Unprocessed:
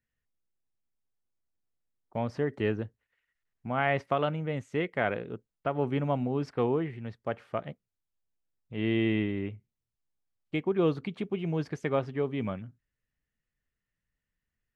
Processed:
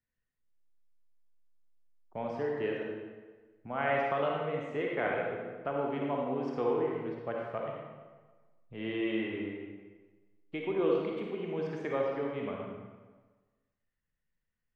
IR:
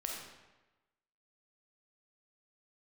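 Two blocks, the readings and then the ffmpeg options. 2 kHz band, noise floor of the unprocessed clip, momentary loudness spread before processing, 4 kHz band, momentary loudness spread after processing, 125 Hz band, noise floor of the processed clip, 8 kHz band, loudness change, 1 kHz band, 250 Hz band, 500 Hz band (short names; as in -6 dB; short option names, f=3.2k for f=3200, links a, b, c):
-2.0 dB, under -85 dBFS, 11 LU, -4.0 dB, 16 LU, -10.5 dB, -84 dBFS, n/a, -3.0 dB, -1.5 dB, -5.0 dB, -1.0 dB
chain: -filter_complex "[0:a]lowpass=f=2.9k:p=1,acrossover=split=270[a][b];[a]acompressor=threshold=-44dB:ratio=10[c];[c][b]amix=inputs=2:normalize=0[d];[1:a]atrim=start_sample=2205,asetrate=35280,aresample=44100[e];[d][e]afir=irnorm=-1:irlink=0,volume=-3dB"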